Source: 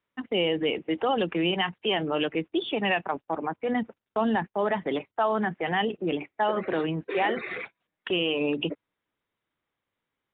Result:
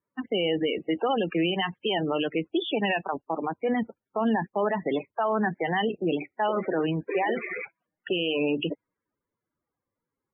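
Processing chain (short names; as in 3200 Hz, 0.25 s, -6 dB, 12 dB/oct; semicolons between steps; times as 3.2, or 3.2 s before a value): loudest bins only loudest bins 32; limiter -19 dBFS, peak gain reduction 4.5 dB; low-pass opened by the level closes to 1300 Hz, open at -24 dBFS; gain +2 dB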